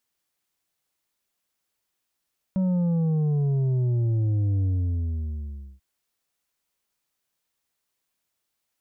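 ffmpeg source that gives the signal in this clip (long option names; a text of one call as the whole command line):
ffmpeg -f lavfi -i "aevalsrc='0.0891*clip((3.24-t)/1.17,0,1)*tanh(2*sin(2*PI*190*3.24/log(65/190)*(exp(log(65/190)*t/3.24)-1)))/tanh(2)':duration=3.24:sample_rate=44100" out.wav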